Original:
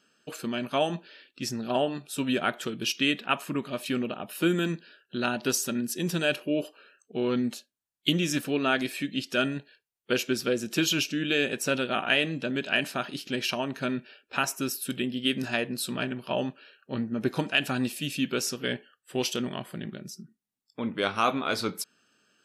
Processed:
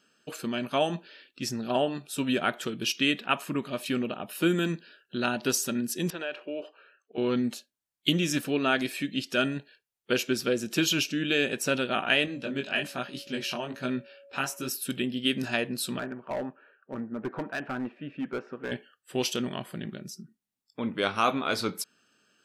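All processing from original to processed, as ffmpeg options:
-filter_complex "[0:a]asettb=1/sr,asplit=3[a][b][c];[a]atrim=end=6.104[d];[b]atrim=start=6.1:end=7.18,asetpts=PTS-STARTPTS,afade=t=in:d=0.004:c=qsin,afade=t=out:st=1.076:d=0.004:c=qsin,highpass=450,lowpass=2.5k,acompressor=threshold=-31dB:ratio=2.5:attack=3.2:release=140:knee=1:detection=peak[e];[c]atrim=start=7.176[f];[d][e]acrossfade=d=0.004:c1=hsin:c2=qsin[g];[g][f]acrossfade=d=0.004:c1=qsin:c2=hsin,asettb=1/sr,asplit=3[h][i][j];[h]atrim=end=12.264[k];[i]atrim=start=12.26:end=14.68,asetpts=PTS-STARTPTS,afade=t=in:d=0.004:c=qsin,afade=t=out:st=2.416:d=0.004:c=qsin,flanger=delay=15.5:depth=6.8:speed=1.2,aeval=exprs='val(0)+0.00282*sin(2*PI*560*n/s)':c=same[l];[j]atrim=start=14.676[m];[k][l]acrossfade=d=0.004:c1=hsin:c2=qsin[n];[n][m]acrossfade=d=0.004:c1=qsin:c2=hsin,asettb=1/sr,asplit=3[o][p][q];[o]atrim=end=15.994[r];[p]atrim=start=15.99:end=18.72,asetpts=PTS-STARTPTS,afade=t=in:d=0.004:c=qsin,afade=t=out:st=2.726:d=0.004:c=qsin,lowpass=f=1.6k:w=0.5412,lowpass=f=1.6k:w=1.3066,aemphasis=mode=production:type=bsi,volume=27dB,asoftclip=hard,volume=-27dB[s];[q]atrim=start=18.716[t];[r][s]acrossfade=d=0.004:c1=hsin:c2=qsin[u];[u][t]acrossfade=d=0.004:c1=qsin:c2=hsin"

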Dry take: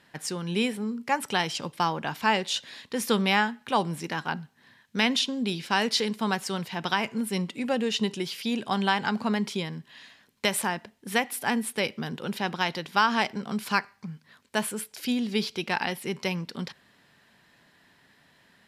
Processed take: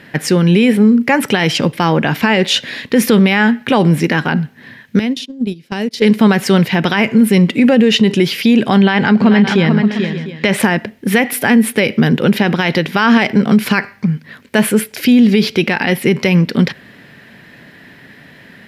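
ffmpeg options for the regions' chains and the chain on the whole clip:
-filter_complex "[0:a]asettb=1/sr,asplit=3[a][b][c];[a]atrim=end=4.994[d];[b]atrim=start=4.99:end=6.02,asetpts=PTS-STARTPTS,afade=t=in:d=0.004:c=qsin,afade=t=out:st=1.026:d=0.004:c=qsin,agate=range=-23dB:threshold=-28dB:ratio=16:release=100:detection=peak,equalizer=f=1.7k:w=0.53:g=-9.5,acompressor=threshold=-37dB:ratio=5:attack=3.2:release=140:knee=1:detection=peak[e];[c]atrim=start=6.016[f];[d][e]acrossfade=d=0.004:c1=hsin:c2=qsin[g];[g][f]acrossfade=d=0.004:c1=qsin:c2=hsin,asettb=1/sr,asplit=3[h][i][j];[h]atrim=end=8.774[k];[i]atrim=start=8.77:end=10.6,asetpts=PTS-STARTPTS,afade=t=in:d=0.004:c=qsin,afade=t=out:st=1.826:d=0.004:c=qsin,equalizer=f=12k:t=o:w=0.83:g=-15,aecho=1:1:438|568|701:0.299|0.133|0.106,atrim=end_sample=80703[l];[j]atrim=start=10.596[m];[k][l]acrossfade=d=0.004:c1=hsin:c2=qsin[n];[n][m]acrossfade=d=0.004:c1=qsin:c2=hsin,equalizer=f=125:t=o:w=1:g=5,equalizer=f=250:t=o:w=1:g=5,equalizer=f=500:t=o:w=1:g=4,equalizer=f=1k:t=o:w=1:g=-6,equalizer=f=2k:t=o:w=1:g=6,equalizer=f=4k:t=o:w=1:g=-3,equalizer=f=8k:t=o:w=1:g=-8,alimiter=level_in=19dB:limit=-1dB:release=50:level=0:latency=1,volume=-1.5dB"

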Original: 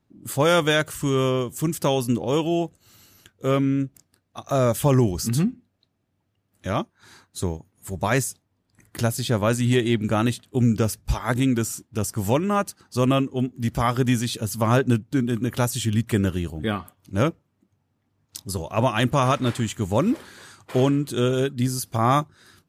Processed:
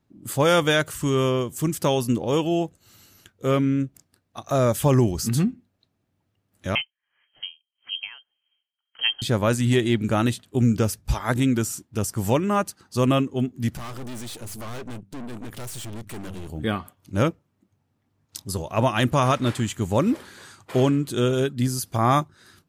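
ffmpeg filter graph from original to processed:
-filter_complex "[0:a]asettb=1/sr,asplit=3[a][b][c];[a]atrim=end=6.754[d];[b]atrim=start=6.75:end=9.22,asetpts=PTS-STARTPTS,afade=t=in:d=0.004:c=qsin,afade=t=out:st=2.466:d=0.004:c=qsin,lowpass=f=2.8k:t=q:w=0.5098,lowpass=f=2.8k:t=q:w=0.6013,lowpass=f=2.8k:t=q:w=0.9,lowpass=f=2.8k:t=q:w=2.563,afreqshift=-3300,aeval=exprs='val(0)*pow(10,-29*(0.5-0.5*cos(2*PI*1.7*n/s))/20)':c=same[e];[c]atrim=start=9.216[f];[d][e]acrossfade=d=0.004:c1=hsin:c2=qsin[g];[g][f]acrossfade=d=0.004:c1=qsin:c2=hsin,asettb=1/sr,asplit=3[h][i][j];[h]atrim=end=13.774[k];[i]atrim=start=13.77:end=16.5,asetpts=PTS-STARTPTS,afade=t=in:d=0.004:c=qsin,afade=t=out:st=2.726:d=0.004:c=qsin,equalizer=f=9.1k:t=o:w=0.34:g=4.5,bandreject=f=98.1:t=h:w=4,bandreject=f=196.2:t=h:w=4,aeval=exprs='(tanh(50.1*val(0)+0.8)-tanh(0.8))/50.1':c=same[l];[j]atrim=start=16.496[m];[k][l]acrossfade=d=0.004:c1=hsin:c2=qsin[n];[n][m]acrossfade=d=0.004:c1=qsin:c2=hsin"

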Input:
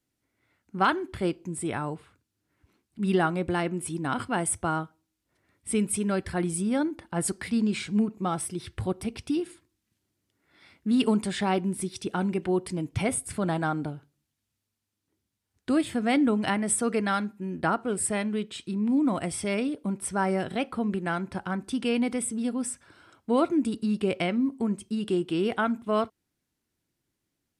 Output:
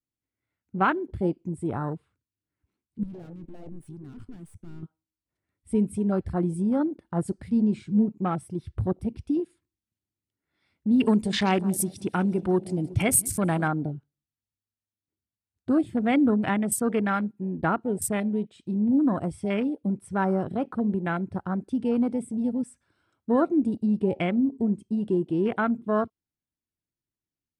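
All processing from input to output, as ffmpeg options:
-filter_complex "[0:a]asettb=1/sr,asplit=3[a][b][c];[a]atrim=end=3.034[d];[b]atrim=start=3.03:end=4.83,asetpts=PTS-STARTPTS,afade=t=in:d=0.004:c=qsin,afade=t=out:st=1.796:d=0.004:c=qsin,aeval=exprs='(tanh(63.1*val(0)+0.75)-tanh(0.75))/63.1':c=same,acompressor=threshold=-40dB:ratio=2:attack=3.2:release=140:knee=1:detection=peak[e];[c]atrim=start=4.826[f];[d][e]acrossfade=d=0.004:c1=hsin:c2=qsin[g];[g][f]acrossfade=d=0.004:c1=qsin:c2=hsin,asettb=1/sr,asplit=3[h][i][j];[h]atrim=end=11.054[k];[i]atrim=start=11.05:end=13.68,asetpts=PTS-STARTPTS,afade=t=in:d=0.004:c=qsin,afade=t=out:st=2.626:d=0.004:c=qsin,highshelf=f=2.3k:g=11,aecho=1:1:181|362|543|724|905:0.15|0.0793|0.042|0.0223|0.0118,atrim=end_sample=115983[l];[j]atrim=start=13.676[m];[k][l]acrossfade=d=0.004:c1=hsin:c2=qsin[n];[n][m]acrossfade=d=0.004:c1=qsin:c2=hsin,afwtdn=0.0224,lowshelf=f=180:g=7"

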